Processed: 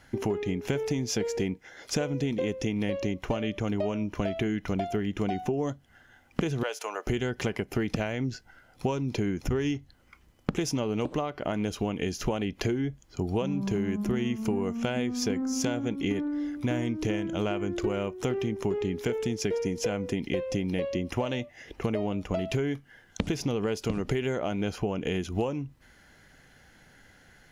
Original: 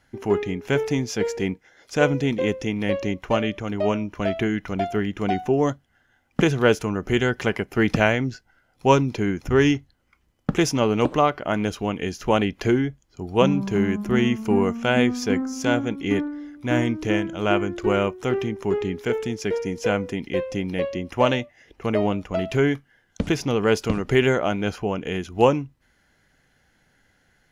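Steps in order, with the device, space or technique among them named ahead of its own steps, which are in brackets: 6.63–7.07 s: high-pass 570 Hz 24 dB/octave; serial compression, leveller first (compression 2:1, threshold -22 dBFS, peak gain reduction 7 dB; compression 6:1, threshold -32 dBFS, peak gain reduction 15 dB); dynamic bell 1.4 kHz, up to -5 dB, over -52 dBFS, Q 0.88; trim +6.5 dB

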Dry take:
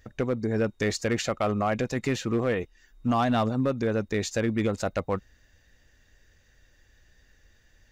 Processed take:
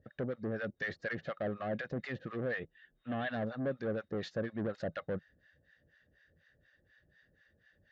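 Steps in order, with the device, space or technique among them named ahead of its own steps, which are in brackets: guitar amplifier with harmonic tremolo (harmonic tremolo 4.1 Hz, depth 100%, crossover 740 Hz; saturation -30.5 dBFS, distortion -9 dB; cabinet simulation 92–3900 Hz, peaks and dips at 160 Hz +8 dB, 560 Hz +6 dB, 950 Hz -9 dB, 1.7 kHz +8 dB, 2.4 kHz -7 dB); 2.59–3.30 s: resonant high shelf 4.2 kHz -7.5 dB, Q 3; trim -2.5 dB

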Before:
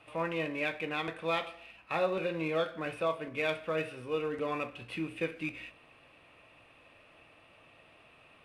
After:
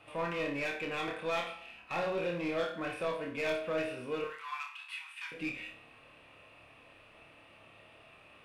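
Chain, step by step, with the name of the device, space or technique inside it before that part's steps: saturation between pre-emphasis and de-emphasis (treble shelf 2.9 kHz +8.5 dB; saturation -29 dBFS, distortion -11 dB; treble shelf 2.9 kHz -8.5 dB); 4.24–5.32 s: steep high-pass 890 Hz 72 dB/octave; flutter echo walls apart 4.9 m, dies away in 0.36 s

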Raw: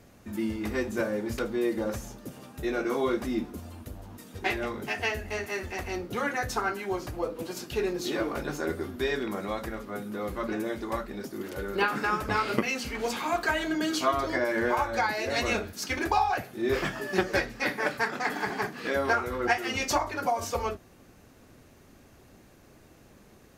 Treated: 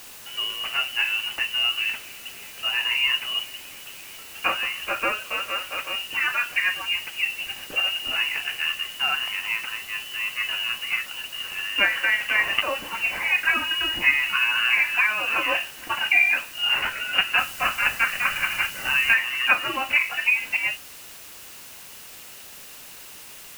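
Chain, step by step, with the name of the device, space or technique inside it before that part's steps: scrambled radio voice (band-pass 350–2800 Hz; frequency inversion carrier 3.2 kHz; white noise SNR 17 dB); 17.38–19.14 s: tone controls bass +9 dB, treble +5 dB; trim +6.5 dB

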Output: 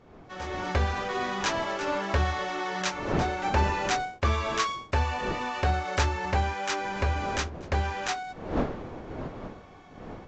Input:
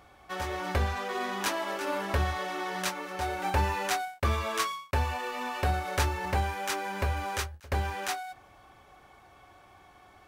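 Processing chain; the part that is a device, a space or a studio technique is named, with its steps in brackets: smartphone video outdoors (wind noise 510 Hz -41 dBFS; level rider gain up to 10 dB; trim -7.5 dB; AAC 64 kbps 16 kHz)

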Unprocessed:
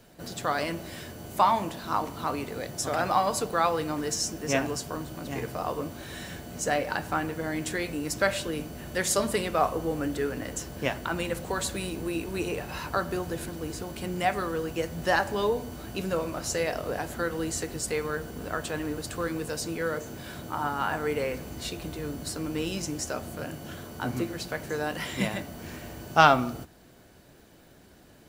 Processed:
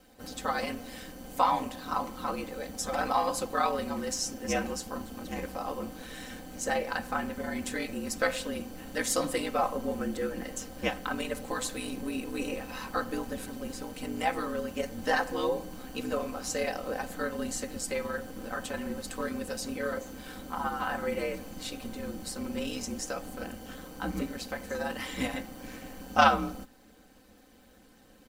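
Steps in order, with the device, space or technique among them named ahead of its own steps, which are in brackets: ring-modulated robot voice (ring modulator 65 Hz; comb 3.9 ms, depth 75%); trim -2 dB

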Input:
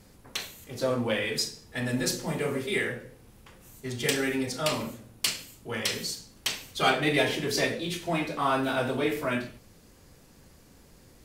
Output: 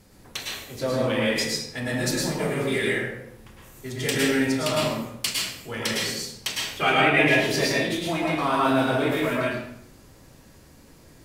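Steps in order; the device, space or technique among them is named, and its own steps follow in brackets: 6.74–7.28 s: resonant high shelf 3.3 kHz -6.5 dB, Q 3; bathroom (reverberation RT60 0.70 s, pre-delay 100 ms, DRR -3 dB)

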